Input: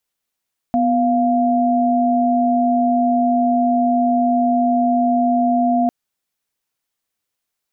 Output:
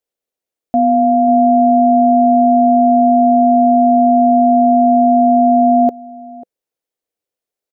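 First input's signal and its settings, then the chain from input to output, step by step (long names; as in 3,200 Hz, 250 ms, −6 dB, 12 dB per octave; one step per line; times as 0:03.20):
held notes B3/F5 sine, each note −16 dBFS 5.15 s
drawn EQ curve 190 Hz 0 dB, 500 Hz +13 dB, 1,000 Hz −1 dB
slap from a distant wall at 93 metres, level −14 dB
expander for the loud parts 1.5 to 1, over −24 dBFS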